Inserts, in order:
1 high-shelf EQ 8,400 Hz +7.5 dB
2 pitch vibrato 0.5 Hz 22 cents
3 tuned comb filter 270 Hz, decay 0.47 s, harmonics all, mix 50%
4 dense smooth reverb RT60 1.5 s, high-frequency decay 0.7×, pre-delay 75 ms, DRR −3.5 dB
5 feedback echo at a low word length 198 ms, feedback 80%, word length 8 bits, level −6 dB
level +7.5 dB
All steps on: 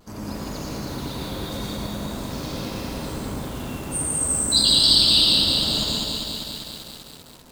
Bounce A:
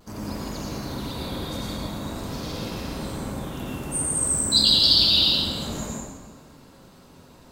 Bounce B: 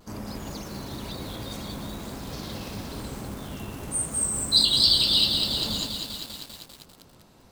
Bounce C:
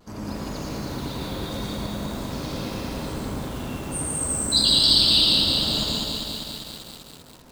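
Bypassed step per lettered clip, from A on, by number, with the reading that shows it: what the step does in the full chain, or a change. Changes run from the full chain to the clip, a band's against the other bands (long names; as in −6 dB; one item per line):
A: 5, change in integrated loudness −2.0 LU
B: 4, change in crest factor +2.5 dB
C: 1, 8 kHz band −3.5 dB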